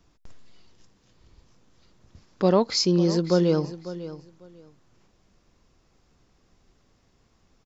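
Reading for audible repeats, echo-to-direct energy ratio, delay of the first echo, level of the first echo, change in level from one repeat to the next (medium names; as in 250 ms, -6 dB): 2, -14.5 dB, 548 ms, -14.5 dB, -14.5 dB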